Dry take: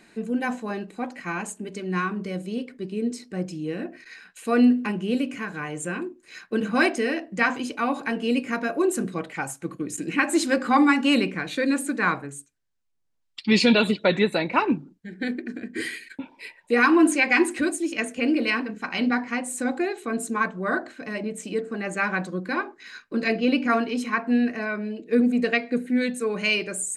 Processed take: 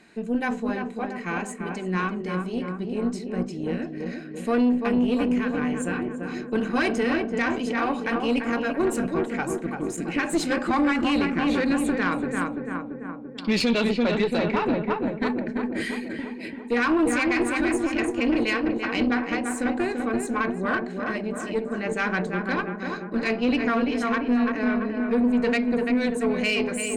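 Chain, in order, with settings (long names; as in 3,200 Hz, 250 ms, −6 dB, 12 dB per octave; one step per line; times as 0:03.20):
high-shelf EQ 7,900 Hz −7.5 dB
feedback echo with a low-pass in the loop 339 ms, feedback 66%, low-pass 1,600 Hz, level −4.5 dB
convolution reverb, pre-delay 3 ms, DRR 17 dB
brickwall limiter −13 dBFS, peak gain reduction 7 dB
tube saturation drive 17 dB, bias 0.5
level +2 dB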